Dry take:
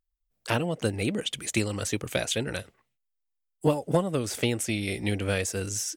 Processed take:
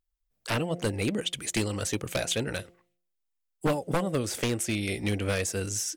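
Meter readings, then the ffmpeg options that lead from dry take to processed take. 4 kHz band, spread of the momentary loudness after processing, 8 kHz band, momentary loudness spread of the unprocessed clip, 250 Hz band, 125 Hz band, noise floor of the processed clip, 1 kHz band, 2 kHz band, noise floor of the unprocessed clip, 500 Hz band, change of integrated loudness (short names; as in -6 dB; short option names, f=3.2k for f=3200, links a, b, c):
-0.5 dB, 3 LU, 0.0 dB, 4 LU, -1.0 dB, -1.5 dB, -80 dBFS, -0.5 dB, -1.0 dB, -80 dBFS, -2.0 dB, -1.0 dB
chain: -af "aeval=exprs='0.126*(abs(mod(val(0)/0.126+3,4)-2)-1)':c=same,bandreject=f=175.1:t=h:w=4,bandreject=f=350.2:t=h:w=4,bandreject=f=525.3:t=h:w=4,bandreject=f=700.4:t=h:w=4"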